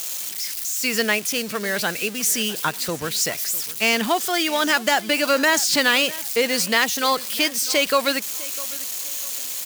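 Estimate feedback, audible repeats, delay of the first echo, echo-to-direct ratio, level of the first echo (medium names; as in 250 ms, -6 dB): 31%, 2, 652 ms, -19.0 dB, -19.5 dB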